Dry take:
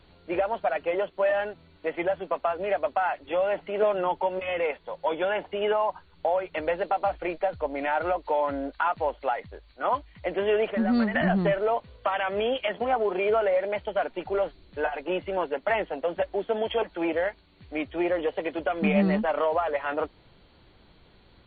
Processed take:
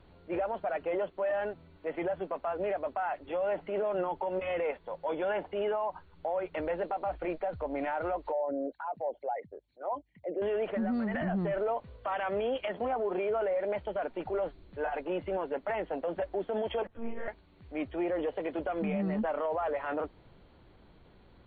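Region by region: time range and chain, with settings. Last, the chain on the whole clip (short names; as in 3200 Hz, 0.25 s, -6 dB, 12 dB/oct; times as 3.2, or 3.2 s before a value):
8.32–10.42 formant sharpening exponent 2 + HPF 220 Hz + bell 1200 Hz -15 dB 0.78 oct
16.87–17.28 resonator 55 Hz, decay 0.46 s, mix 80% + monotone LPC vocoder at 8 kHz 230 Hz + ensemble effect
whole clip: LPF 1400 Hz 6 dB/oct; transient shaper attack -6 dB, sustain 0 dB; limiter -24.5 dBFS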